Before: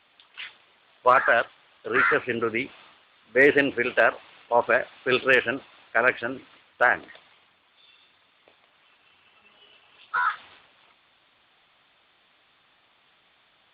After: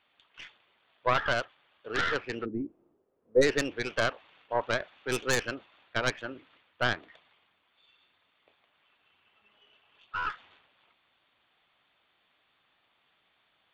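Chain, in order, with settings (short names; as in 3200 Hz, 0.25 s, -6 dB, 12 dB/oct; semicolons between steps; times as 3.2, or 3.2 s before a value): tracing distortion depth 0.27 ms; 2.44–3.41 synth low-pass 260 Hz -> 530 Hz, resonance Q 3.4; gain -8.5 dB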